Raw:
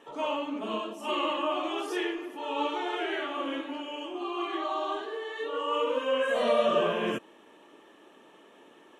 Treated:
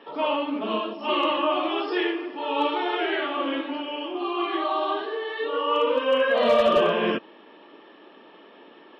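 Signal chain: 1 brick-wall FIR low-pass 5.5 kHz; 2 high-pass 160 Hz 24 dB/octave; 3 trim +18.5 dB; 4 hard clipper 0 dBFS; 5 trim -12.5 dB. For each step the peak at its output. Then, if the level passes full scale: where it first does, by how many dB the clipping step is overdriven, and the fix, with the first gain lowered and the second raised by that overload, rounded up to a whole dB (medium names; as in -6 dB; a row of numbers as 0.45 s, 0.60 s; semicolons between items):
-12.0 dBFS, -13.5 dBFS, +5.0 dBFS, 0.0 dBFS, -12.5 dBFS; step 3, 5.0 dB; step 3 +13.5 dB, step 5 -7.5 dB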